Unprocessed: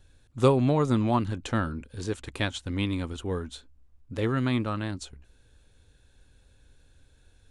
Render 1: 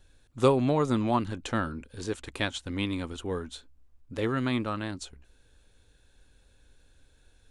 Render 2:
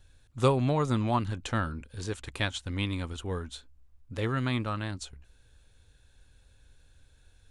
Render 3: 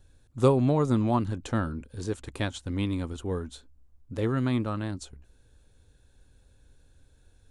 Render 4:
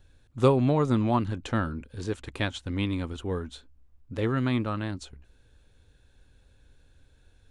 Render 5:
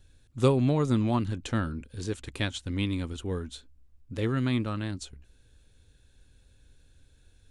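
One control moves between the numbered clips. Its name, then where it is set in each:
peaking EQ, frequency: 100 Hz, 300 Hz, 2.6 kHz, 11 kHz, 890 Hz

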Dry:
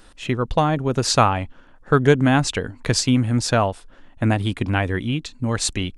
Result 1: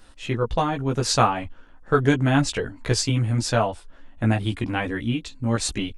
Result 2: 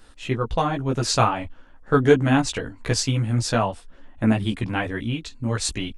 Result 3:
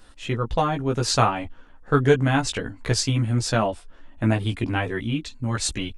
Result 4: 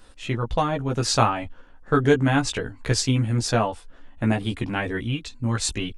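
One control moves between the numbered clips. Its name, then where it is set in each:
chorus, rate: 0.75 Hz, 2 Hz, 0.5 Hz, 0.21 Hz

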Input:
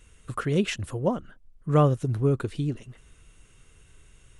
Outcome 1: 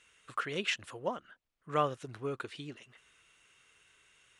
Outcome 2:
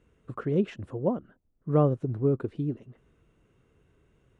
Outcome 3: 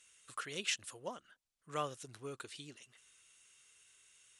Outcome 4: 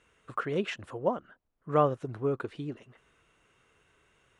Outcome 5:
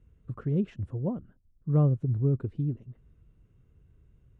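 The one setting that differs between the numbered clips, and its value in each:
band-pass filter, frequency: 2.4 kHz, 330 Hz, 6.3 kHz, 950 Hz, 110 Hz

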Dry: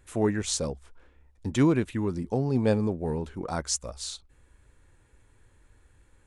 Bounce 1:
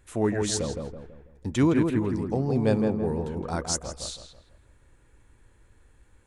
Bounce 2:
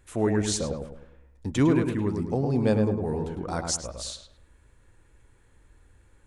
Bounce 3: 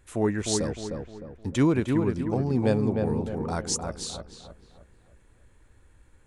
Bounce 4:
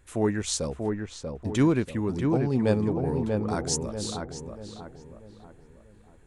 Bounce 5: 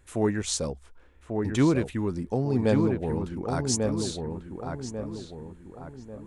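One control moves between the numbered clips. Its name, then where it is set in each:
filtered feedback delay, time: 164 ms, 105 ms, 306 ms, 638 ms, 1143 ms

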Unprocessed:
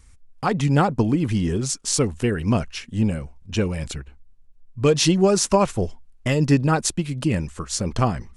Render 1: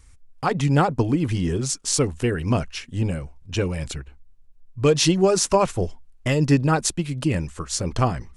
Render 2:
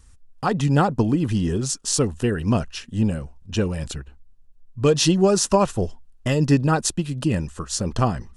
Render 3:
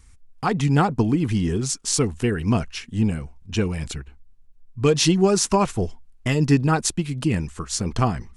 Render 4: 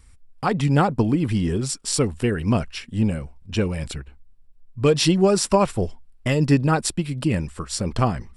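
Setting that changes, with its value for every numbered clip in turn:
band-stop, frequency: 210 Hz, 2.2 kHz, 560 Hz, 6.4 kHz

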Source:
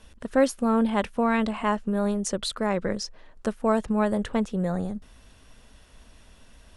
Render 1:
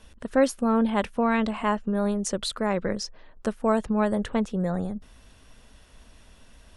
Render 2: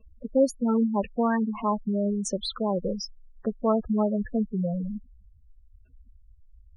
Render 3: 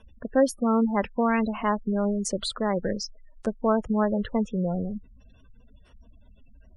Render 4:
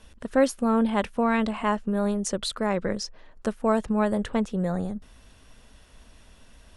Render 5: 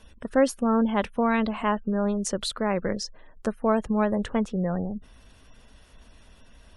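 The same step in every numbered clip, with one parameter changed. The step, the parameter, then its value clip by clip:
spectral gate, under each frame's peak: -50 dB, -10 dB, -20 dB, -60 dB, -35 dB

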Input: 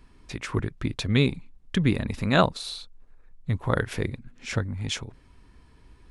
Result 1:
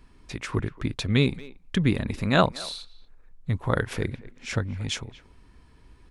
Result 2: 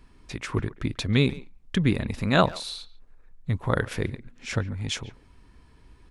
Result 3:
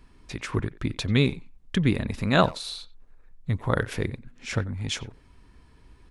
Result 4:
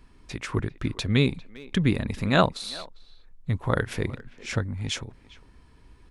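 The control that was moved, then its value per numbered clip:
speakerphone echo, time: 230 ms, 140 ms, 90 ms, 400 ms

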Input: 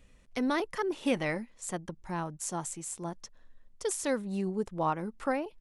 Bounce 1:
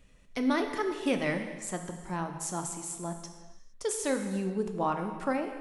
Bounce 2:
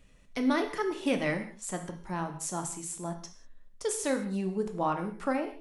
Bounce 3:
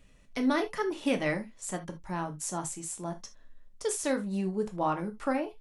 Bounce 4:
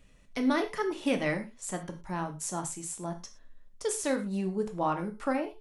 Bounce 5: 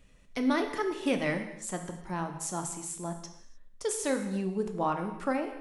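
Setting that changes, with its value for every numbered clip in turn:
gated-style reverb, gate: 490 ms, 220 ms, 100 ms, 140 ms, 330 ms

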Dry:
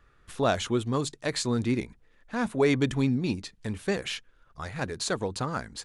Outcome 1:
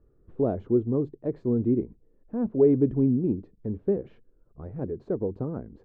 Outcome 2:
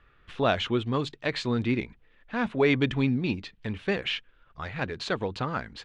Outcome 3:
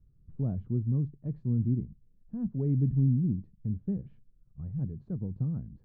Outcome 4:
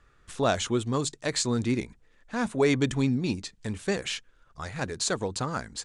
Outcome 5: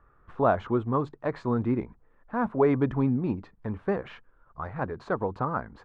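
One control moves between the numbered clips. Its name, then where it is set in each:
resonant low-pass, frequency: 400 Hz, 3 kHz, 160 Hz, 8 kHz, 1.1 kHz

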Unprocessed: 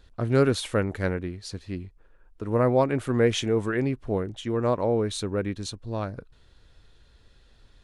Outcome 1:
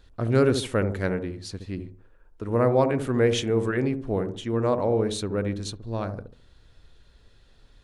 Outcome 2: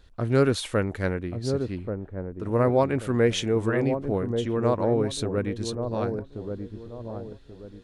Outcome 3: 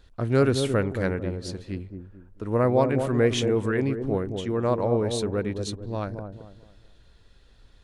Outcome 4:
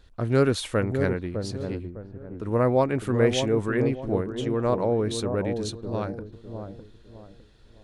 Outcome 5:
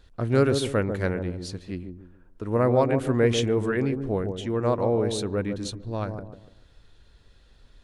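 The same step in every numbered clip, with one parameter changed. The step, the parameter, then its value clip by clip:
feedback echo behind a low-pass, time: 70 ms, 1134 ms, 221 ms, 606 ms, 145 ms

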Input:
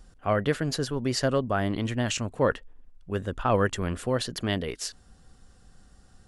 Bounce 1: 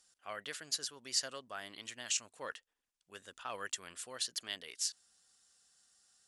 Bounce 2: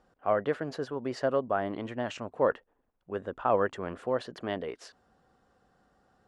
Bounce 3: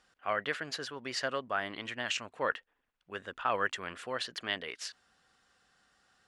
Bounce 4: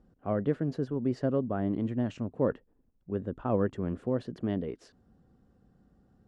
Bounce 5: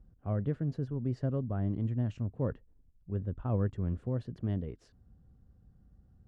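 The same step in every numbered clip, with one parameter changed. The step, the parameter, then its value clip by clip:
band-pass filter, frequency: 7.5 kHz, 710 Hz, 2.1 kHz, 250 Hz, 100 Hz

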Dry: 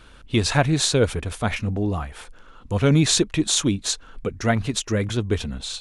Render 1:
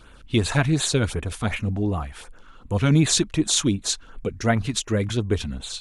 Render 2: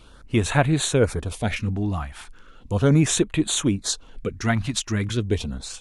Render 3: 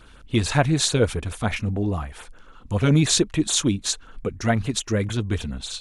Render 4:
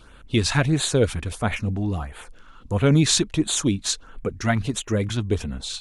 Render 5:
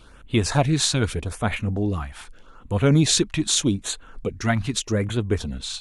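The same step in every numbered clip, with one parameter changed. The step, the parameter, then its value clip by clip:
LFO notch, rate: 2.7 Hz, 0.37 Hz, 6.9 Hz, 1.5 Hz, 0.82 Hz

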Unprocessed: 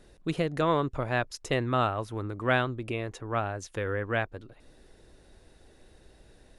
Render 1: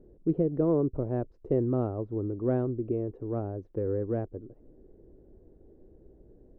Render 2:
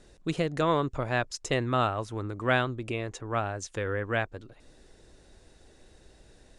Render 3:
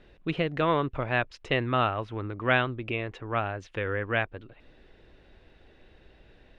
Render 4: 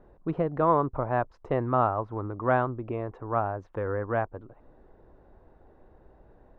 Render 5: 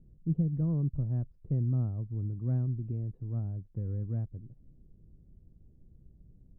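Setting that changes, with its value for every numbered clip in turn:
resonant low-pass, frequency: 390 Hz, 7.7 kHz, 2.8 kHz, 1 kHz, 160 Hz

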